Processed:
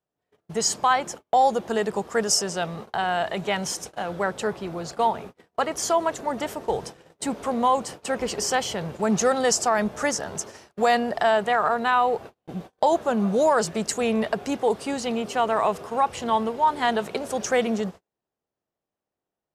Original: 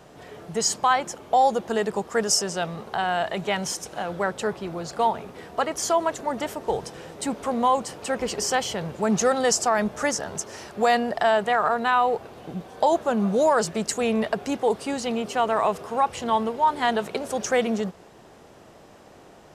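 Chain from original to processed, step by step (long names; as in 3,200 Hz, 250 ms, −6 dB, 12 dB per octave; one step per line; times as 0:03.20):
noise gate −37 dBFS, range −39 dB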